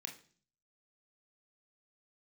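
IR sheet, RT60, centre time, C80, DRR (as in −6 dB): 0.45 s, 15 ms, 16.0 dB, 2.5 dB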